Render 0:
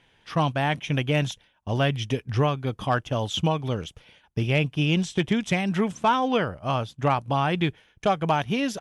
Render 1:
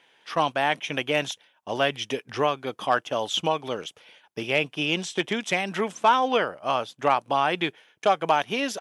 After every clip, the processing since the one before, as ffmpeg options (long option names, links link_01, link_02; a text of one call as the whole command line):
ffmpeg -i in.wav -af "highpass=380,volume=2.5dB" out.wav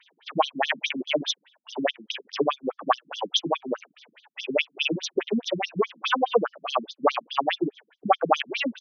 ffmpeg -i in.wav -af "afftfilt=real='re*between(b*sr/1024,200*pow(4800/200,0.5+0.5*sin(2*PI*4.8*pts/sr))/1.41,200*pow(4800/200,0.5+0.5*sin(2*PI*4.8*pts/sr))*1.41)':imag='im*between(b*sr/1024,200*pow(4800/200,0.5+0.5*sin(2*PI*4.8*pts/sr))/1.41,200*pow(4800/200,0.5+0.5*sin(2*PI*4.8*pts/sr))*1.41)':win_size=1024:overlap=0.75,volume=7.5dB" out.wav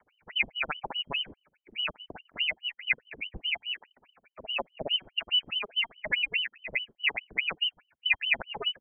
ffmpeg -i in.wav -af "equalizer=frequency=125:width_type=o:width=1:gain=10,equalizer=frequency=500:width_type=o:width=1:gain=-12,equalizer=frequency=2000:width_type=o:width=1:gain=-8,lowpass=frequency=2700:width_type=q:width=0.5098,lowpass=frequency=2700:width_type=q:width=0.6013,lowpass=frequency=2700:width_type=q:width=0.9,lowpass=frequency=2700:width_type=q:width=2.563,afreqshift=-3200" out.wav